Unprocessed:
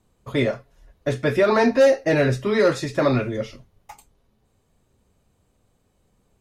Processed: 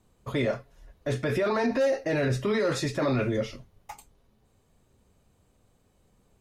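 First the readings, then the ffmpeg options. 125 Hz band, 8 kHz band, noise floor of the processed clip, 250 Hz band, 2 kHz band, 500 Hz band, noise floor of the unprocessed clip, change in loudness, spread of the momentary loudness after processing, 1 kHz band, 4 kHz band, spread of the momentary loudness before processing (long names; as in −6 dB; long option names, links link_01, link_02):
−4.5 dB, −3.0 dB, −67 dBFS, −6.0 dB, −7.0 dB, −7.5 dB, −67 dBFS, −7.0 dB, 12 LU, −7.0 dB, −5.0 dB, 13 LU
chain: -af "alimiter=limit=-18.5dB:level=0:latency=1:release=30"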